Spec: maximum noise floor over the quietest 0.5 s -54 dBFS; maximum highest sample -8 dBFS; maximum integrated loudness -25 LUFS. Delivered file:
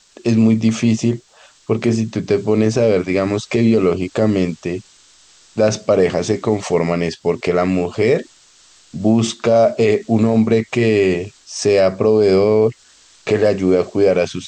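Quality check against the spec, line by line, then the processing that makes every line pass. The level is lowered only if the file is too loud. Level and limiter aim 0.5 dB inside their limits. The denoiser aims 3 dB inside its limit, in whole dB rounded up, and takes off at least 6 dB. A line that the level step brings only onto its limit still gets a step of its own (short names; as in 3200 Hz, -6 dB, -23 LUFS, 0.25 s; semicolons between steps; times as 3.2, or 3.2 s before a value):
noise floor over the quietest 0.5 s -49 dBFS: fail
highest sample -5.0 dBFS: fail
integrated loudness -16.5 LUFS: fail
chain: gain -9 dB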